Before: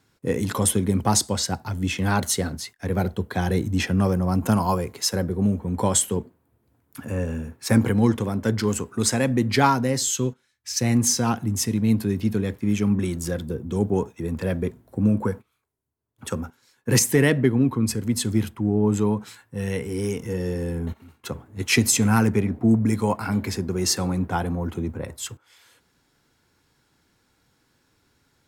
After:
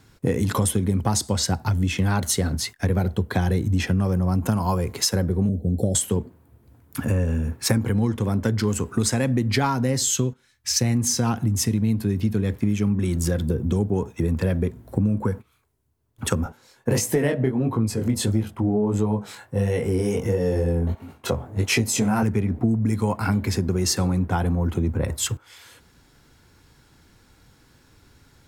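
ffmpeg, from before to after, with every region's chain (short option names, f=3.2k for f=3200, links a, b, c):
-filter_complex "[0:a]asettb=1/sr,asplit=3[a][b][c];[a]atrim=end=5.494[d];[b]atrim=start=5.49:end=5.95,asetpts=PTS-STARTPTS,afade=t=in:d=0.004:c=qsin,afade=t=out:st=0.456:d=0.004:c=qsin,asuperstop=centerf=1600:order=20:qfactor=0.57,equalizer=f=5.2k:w=0.82:g=-9.5[e];[c]atrim=start=5.946[f];[d][e]acrossfade=d=0.004:c1=hsin:c2=qsin[g];[g][f]acrossfade=d=0.004:c1=qsin:c2=hsin,asettb=1/sr,asplit=3[h][i][j];[h]atrim=end=16.444[k];[i]atrim=start=16.44:end=22.23,asetpts=PTS-STARTPTS,afade=t=in:d=0.004:c=qsin,afade=t=out:st=5.786:d=0.004:c=qsin,equalizer=f=630:t=o:w=1.1:g=10.5,flanger=delay=18:depth=5.8:speed=1.5[l];[j]atrim=start=22.226[m];[k][l]acrossfade=d=0.004:c1=hsin:c2=qsin[n];[n][m]acrossfade=d=0.004:c1=qsin:c2=hsin,lowshelf=f=100:g=11.5,acompressor=threshold=-27dB:ratio=6,volume=8dB"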